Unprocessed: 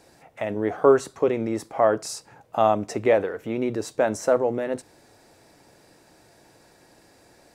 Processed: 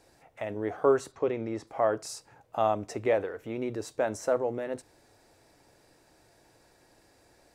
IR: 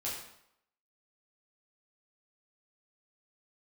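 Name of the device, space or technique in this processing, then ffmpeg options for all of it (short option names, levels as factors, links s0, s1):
low shelf boost with a cut just above: -filter_complex "[0:a]lowshelf=f=63:g=8,equalizer=f=190:t=o:w=0.75:g=-4.5,asplit=3[s0][s1][s2];[s0]afade=t=out:st=1.11:d=0.02[s3];[s1]lowpass=5500,afade=t=in:st=1.11:d=0.02,afade=t=out:st=1.66:d=0.02[s4];[s2]afade=t=in:st=1.66:d=0.02[s5];[s3][s4][s5]amix=inputs=3:normalize=0,volume=0.473"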